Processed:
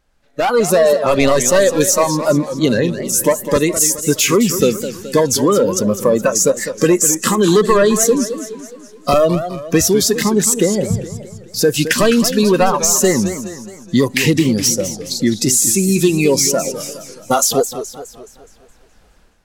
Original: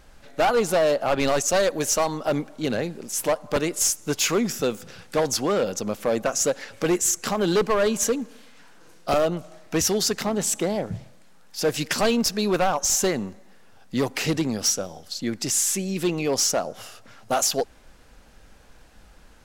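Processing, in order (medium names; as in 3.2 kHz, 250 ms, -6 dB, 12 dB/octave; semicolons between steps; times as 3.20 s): compression, threshold -23 dBFS, peak gain reduction 5.5 dB; spectral noise reduction 15 dB; level rider gain up to 13 dB; dynamic bell 4.7 kHz, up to -6 dB, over -28 dBFS, Q 1.4; modulated delay 210 ms, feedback 49%, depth 202 cents, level -11 dB; trim +2 dB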